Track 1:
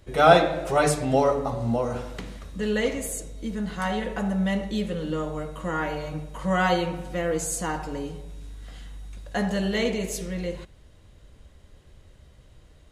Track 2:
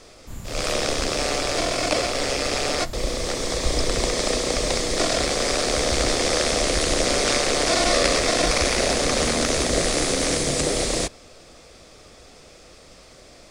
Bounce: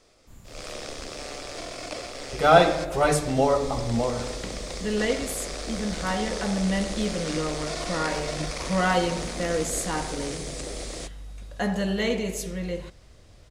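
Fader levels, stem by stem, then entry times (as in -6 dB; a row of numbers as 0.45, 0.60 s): -0.5, -13.0 dB; 2.25, 0.00 s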